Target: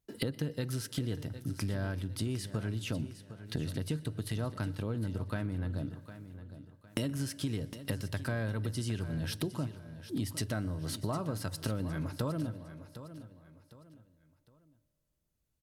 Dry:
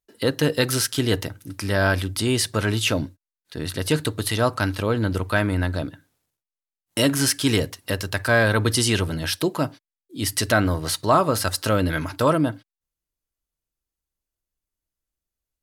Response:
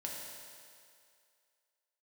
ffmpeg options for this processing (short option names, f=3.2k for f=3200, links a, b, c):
-filter_complex "[0:a]equalizer=f=140:t=o:w=2.5:g=13.5,acompressor=threshold=-33dB:ratio=8,aecho=1:1:758|1516|2274:0.224|0.0761|0.0259,asplit=2[a][b];[1:a]atrim=start_sample=2205,adelay=122[c];[b][c]afir=irnorm=-1:irlink=0,volume=-20.5dB[d];[a][d]amix=inputs=2:normalize=0"